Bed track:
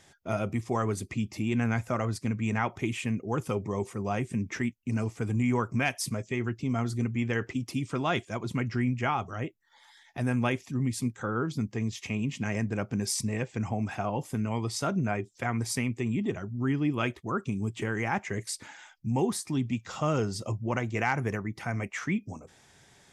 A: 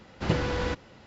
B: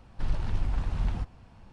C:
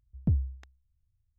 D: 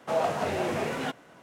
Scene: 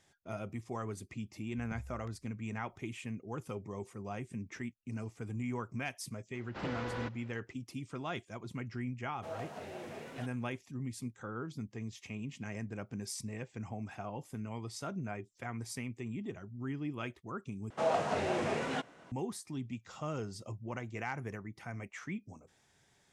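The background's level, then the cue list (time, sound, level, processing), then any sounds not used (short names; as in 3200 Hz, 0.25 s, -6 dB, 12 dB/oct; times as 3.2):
bed track -11 dB
1.44 add C -5 dB + compressor, threshold -41 dBFS
6.34 add A -15.5 dB + overdrive pedal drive 17 dB, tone 1700 Hz, clips at -11.5 dBFS
9.15 add D -15.5 dB + bell 1100 Hz -3.5 dB 0.75 oct
17.7 replace with D -4 dB + LPF 9100 Hz 24 dB/oct
not used: B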